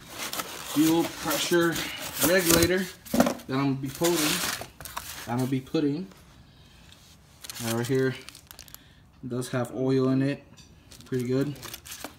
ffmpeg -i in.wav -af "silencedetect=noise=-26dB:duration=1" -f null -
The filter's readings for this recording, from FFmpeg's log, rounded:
silence_start: 5.99
silence_end: 7.44 | silence_duration: 1.46